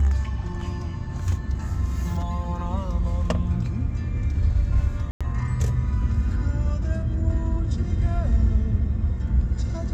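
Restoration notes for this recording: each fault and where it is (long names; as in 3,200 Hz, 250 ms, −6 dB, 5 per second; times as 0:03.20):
0:05.11–0:05.21: drop-out 96 ms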